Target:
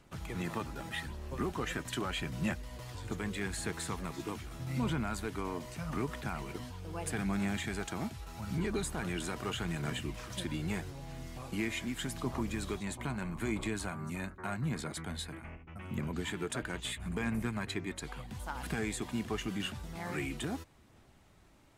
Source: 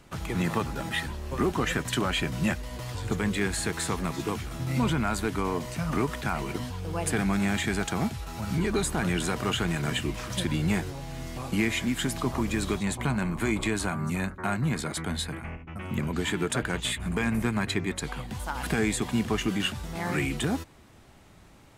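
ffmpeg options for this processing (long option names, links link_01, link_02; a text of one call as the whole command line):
ffmpeg -i in.wav -af "aphaser=in_gain=1:out_gain=1:delay=3.3:decay=0.22:speed=0.81:type=sinusoidal,volume=-9dB" out.wav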